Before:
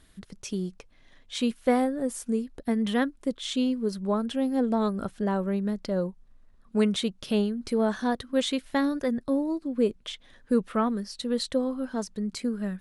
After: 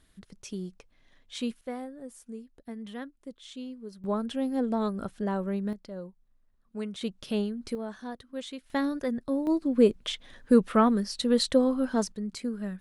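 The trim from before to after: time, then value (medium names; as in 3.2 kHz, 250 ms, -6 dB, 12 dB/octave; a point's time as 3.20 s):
-5.5 dB
from 1.61 s -14 dB
from 4.04 s -3 dB
from 5.73 s -12 dB
from 7.01 s -4 dB
from 7.75 s -12 dB
from 8.70 s -3 dB
from 9.47 s +4 dB
from 12.12 s -3.5 dB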